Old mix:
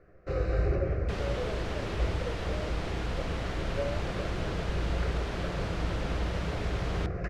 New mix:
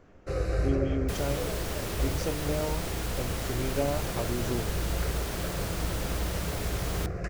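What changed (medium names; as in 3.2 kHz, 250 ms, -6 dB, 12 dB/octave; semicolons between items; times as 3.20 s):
speech: remove two resonant band-passes 970 Hz, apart 1.7 oct; master: remove low-pass 3.6 kHz 12 dB/octave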